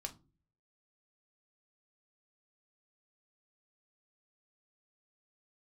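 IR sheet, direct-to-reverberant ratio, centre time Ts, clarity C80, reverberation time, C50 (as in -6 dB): 4.0 dB, 7 ms, 25.0 dB, not exponential, 17.5 dB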